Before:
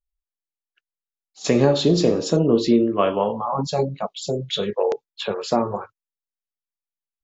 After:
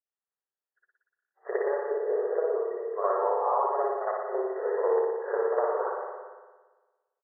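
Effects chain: 3.63–5.8 half-wave gain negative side -7 dB; speakerphone echo 0.39 s, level -20 dB; compressor 6:1, threshold -24 dBFS, peak gain reduction 12.5 dB; FFT band-pass 360–2000 Hz; spring tank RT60 1.3 s, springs 57 ms, chirp 60 ms, DRR -9.5 dB; gain -6 dB

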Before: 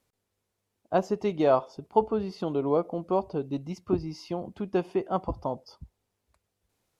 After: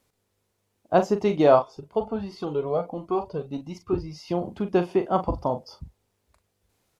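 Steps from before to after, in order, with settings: doubler 40 ms -9 dB; 1.62–4.28 cascading flanger rising 1.4 Hz; gain +5 dB

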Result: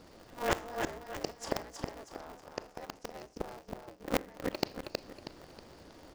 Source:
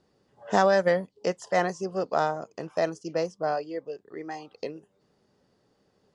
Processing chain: limiter -16 dBFS, peak gain reduction 7.5 dB; flipped gate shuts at -30 dBFS, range -34 dB; on a send: feedback echo 0.319 s, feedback 38%, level -4.5 dB; on the sum: Schroeder reverb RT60 0.46 s, combs from 26 ms, DRR 15.5 dB; polarity switched at an audio rate 120 Hz; gain +12.5 dB

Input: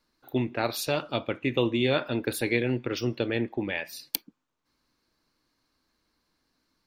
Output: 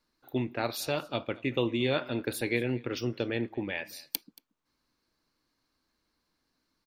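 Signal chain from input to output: echo 0.229 s -23 dB; gain -3.5 dB

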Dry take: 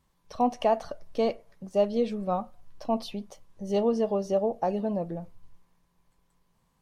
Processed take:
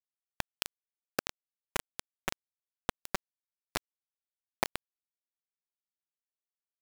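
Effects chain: pre-emphasis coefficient 0.8; compressor 20:1, threshold -42 dBFS, peak gain reduction 12 dB; painted sound fall, 1.34–2.53, 230–2200 Hz -51 dBFS; FDN reverb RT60 0.67 s, low-frequency decay 0.95×, high-frequency decay 0.85×, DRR 14 dB; soft clip -31 dBFS, distortion -31 dB; feedback echo 0.866 s, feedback 17%, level -6 dB; requantised 6-bit, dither none; gain +16.5 dB

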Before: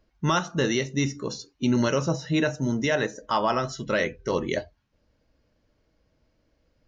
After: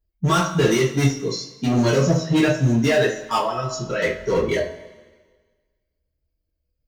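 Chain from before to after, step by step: per-bin expansion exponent 1.5; de-hum 53.28 Hz, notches 34; 3.37–4.02 compressor 6:1, threshold -32 dBFS, peak gain reduction 9.5 dB; hard clip -25 dBFS, distortion -10 dB; two-slope reverb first 0.29 s, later 1.5 s, from -18 dB, DRR -6.5 dB; gain +3 dB

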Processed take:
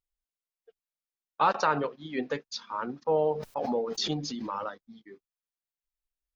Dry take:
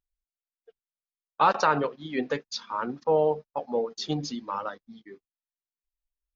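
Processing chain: 3.25–4.81 backwards sustainer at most 22 dB/s; gain -3 dB

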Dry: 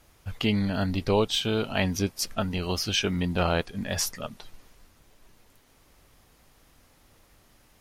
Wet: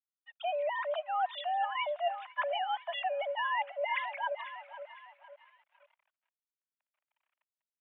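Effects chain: sine-wave speech; rotary speaker horn 0.8 Hz; in parallel at +2.5 dB: vocal rider within 3 dB 0.5 s; on the sum: feedback echo 0.505 s, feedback 46%, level -18 dB; reverse; compressor 10:1, threshold -29 dBFS, peak gain reduction 17.5 dB; reverse; crossover distortion -58 dBFS; mistuned SSB +350 Hz 220–2600 Hz

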